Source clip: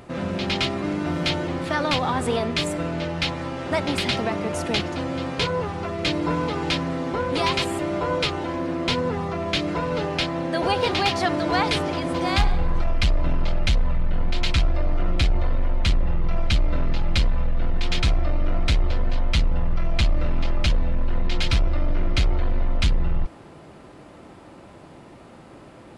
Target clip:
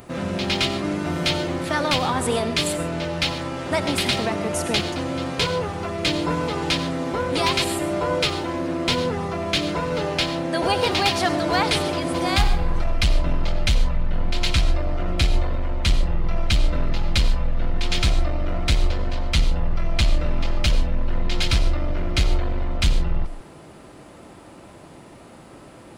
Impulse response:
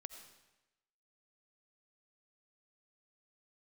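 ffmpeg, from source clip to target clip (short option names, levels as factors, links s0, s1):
-filter_complex "[0:a]asplit=2[s0][s1];[s1]aemphasis=mode=production:type=50fm[s2];[1:a]atrim=start_sample=2205,afade=t=out:st=0.2:d=0.01,atrim=end_sample=9261[s3];[s2][s3]afir=irnorm=-1:irlink=0,volume=3.16[s4];[s0][s4]amix=inputs=2:normalize=0,volume=0.422"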